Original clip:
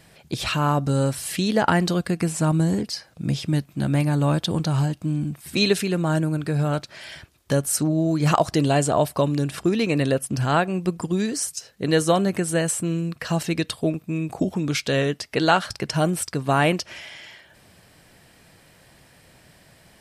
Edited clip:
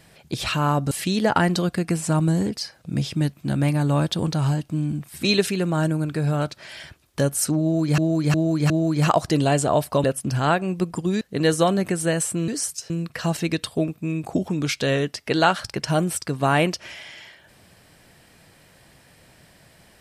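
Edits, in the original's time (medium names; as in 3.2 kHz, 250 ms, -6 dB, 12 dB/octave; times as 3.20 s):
0.91–1.23 s: delete
7.94–8.30 s: loop, 4 plays
9.28–10.10 s: delete
11.27–11.69 s: move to 12.96 s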